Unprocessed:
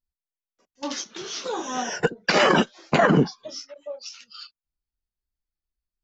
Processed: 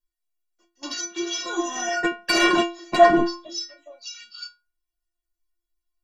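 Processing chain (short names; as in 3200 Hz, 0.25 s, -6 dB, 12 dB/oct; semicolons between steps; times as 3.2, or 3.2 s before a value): in parallel at -5 dB: sine folder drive 8 dB, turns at -6 dBFS; on the sum: metallic resonator 340 Hz, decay 0.36 s, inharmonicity 0.008; gain +9 dB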